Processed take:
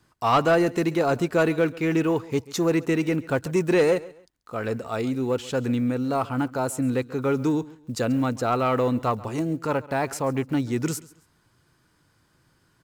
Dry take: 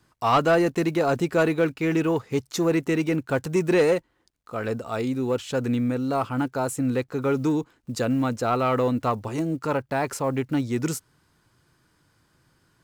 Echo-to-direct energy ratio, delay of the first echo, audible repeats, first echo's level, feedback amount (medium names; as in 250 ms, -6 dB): -19.5 dB, 136 ms, 2, -20.0 dB, 28%